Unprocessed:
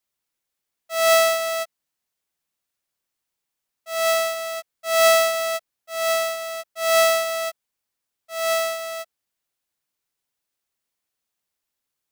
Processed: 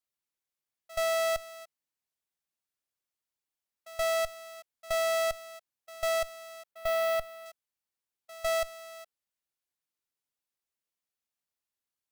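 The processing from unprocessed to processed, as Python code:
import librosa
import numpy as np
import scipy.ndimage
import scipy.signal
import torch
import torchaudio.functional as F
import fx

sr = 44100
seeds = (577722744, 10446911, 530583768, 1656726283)

y = fx.peak_eq(x, sr, hz=6800.0, db=-10.0, octaves=1.6, at=(6.71, 7.46))
y = fx.level_steps(y, sr, step_db=23)
y = fx.clip_asym(y, sr, top_db=-39.0, bottom_db=-20.0)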